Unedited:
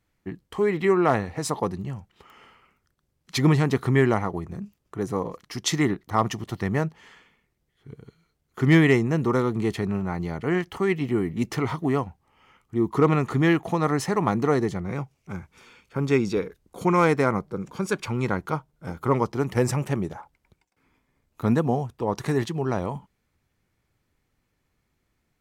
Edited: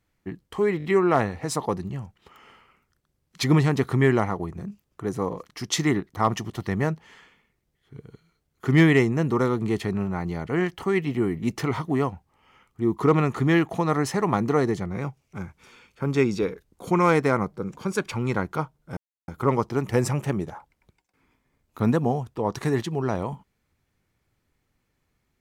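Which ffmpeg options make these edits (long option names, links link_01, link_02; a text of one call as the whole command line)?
ffmpeg -i in.wav -filter_complex "[0:a]asplit=5[link_01][link_02][link_03][link_04][link_05];[link_01]atrim=end=0.802[link_06];[link_02]atrim=start=0.778:end=0.802[link_07];[link_03]atrim=start=0.778:end=0.802[link_08];[link_04]atrim=start=0.778:end=18.91,asetpts=PTS-STARTPTS,afade=type=out:start_time=18.128:duration=0.004:curve=hsin,apad=pad_dur=0.31[link_09];[link_05]atrim=start=18.91,asetpts=PTS-STARTPTS,afade=type=in:duration=0.004:curve=hsin[link_10];[link_06][link_07]acrossfade=duration=0.004:curve1=hsin:curve2=hsin[link_11];[link_11][link_08]acrossfade=duration=0.004:curve1=hsin:curve2=hsin[link_12];[link_09][link_10]concat=n=2:v=0:a=1[link_13];[link_12][link_13]acrossfade=duration=0.004:curve1=hsin:curve2=hsin" out.wav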